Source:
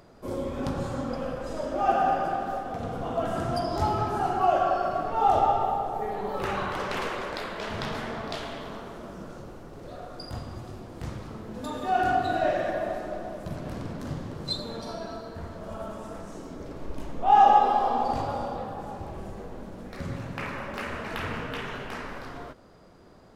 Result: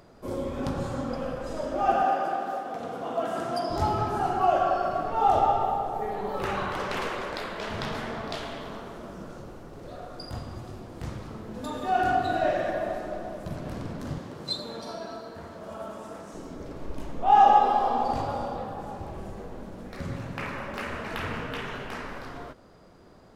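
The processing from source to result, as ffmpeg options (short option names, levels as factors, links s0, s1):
-filter_complex "[0:a]asettb=1/sr,asplit=3[s0][s1][s2];[s0]atrim=end=2.034[s3];[s1]atrim=start=2.03:end=3.7,asetpts=PTS-STARTPTS,afade=t=in:d=0.004:c=qsin,afade=t=out:st=1.666:d=0.004:c=qsin,highpass=250[s4];[s2]atrim=start=3.696[s5];[s3][s4]acrossfade=d=0.004:c1=hsin:c2=qsin[s6];[s6][s5]acrossfade=d=0.004:c1=qsin:c2=hsin,asettb=1/sr,asplit=3[s7][s8][s9];[s7]atrim=end=14.184[s10];[s8]atrim=start=14.18:end=16.34,asetpts=PTS-STARTPTS,afade=t=in:d=0.004:c=qsin,afade=t=out:st=2.156:d=0.004:c=qsin,highpass=f=220:p=1[s11];[s9]atrim=start=16.336[s12];[s10][s11]acrossfade=d=0.004:c1=hsin:c2=qsin[s13];[s13][s12]acrossfade=d=0.004:c1=qsin:c2=hsin"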